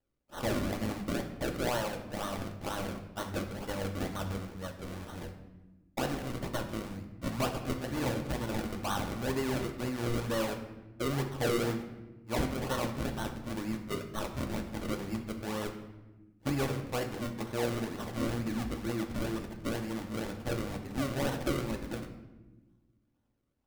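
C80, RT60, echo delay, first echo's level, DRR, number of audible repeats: 11.0 dB, 1.2 s, no echo, no echo, 3.5 dB, no echo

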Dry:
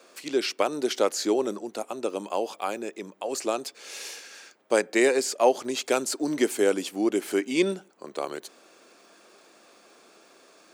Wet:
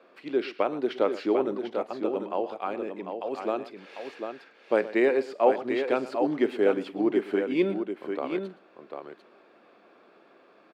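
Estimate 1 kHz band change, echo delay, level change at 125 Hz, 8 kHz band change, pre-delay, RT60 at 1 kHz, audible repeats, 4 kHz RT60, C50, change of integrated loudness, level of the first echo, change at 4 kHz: -0.5 dB, 45 ms, +0.5 dB, under -25 dB, no reverb, no reverb, 3, no reverb, no reverb, -1.0 dB, -17.5 dB, -10.5 dB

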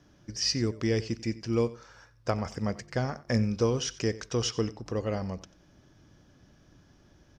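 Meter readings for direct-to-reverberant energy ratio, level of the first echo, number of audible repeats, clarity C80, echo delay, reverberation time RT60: no reverb, -18.0 dB, 2, no reverb, 91 ms, no reverb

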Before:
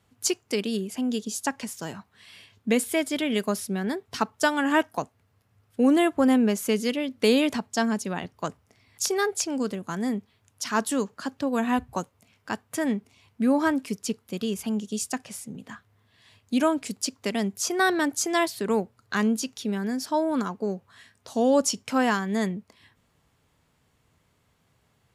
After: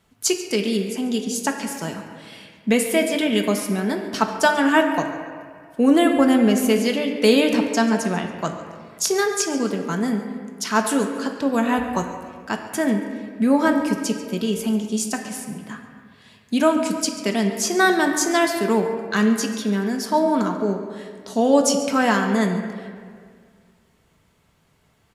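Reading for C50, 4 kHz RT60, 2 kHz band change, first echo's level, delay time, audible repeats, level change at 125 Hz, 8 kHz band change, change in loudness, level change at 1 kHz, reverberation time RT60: 5.5 dB, 1.2 s, +6.0 dB, -16.5 dB, 140 ms, 1, +6.5 dB, +5.0 dB, +5.5 dB, +6.0 dB, 2.0 s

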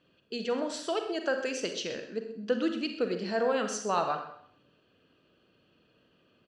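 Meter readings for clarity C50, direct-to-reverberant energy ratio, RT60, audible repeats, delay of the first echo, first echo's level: 6.5 dB, 5.5 dB, 0.60 s, 2, 128 ms, -14.5 dB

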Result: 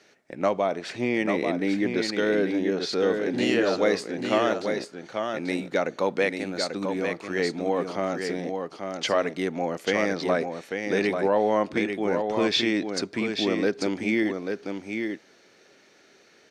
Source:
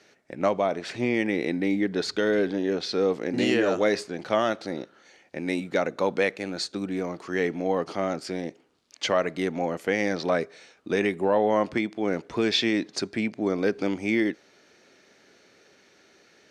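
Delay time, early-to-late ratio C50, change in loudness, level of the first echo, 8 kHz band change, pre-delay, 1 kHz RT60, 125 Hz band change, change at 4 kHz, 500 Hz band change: 840 ms, no reverb, +0.5 dB, -5.5 dB, +1.0 dB, no reverb, no reverb, -0.5 dB, +1.0 dB, +1.0 dB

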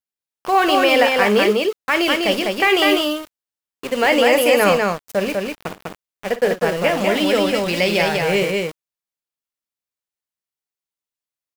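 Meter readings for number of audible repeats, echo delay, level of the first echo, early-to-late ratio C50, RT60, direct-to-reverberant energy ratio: 2, 53 ms, -14.0 dB, no reverb, no reverb, no reverb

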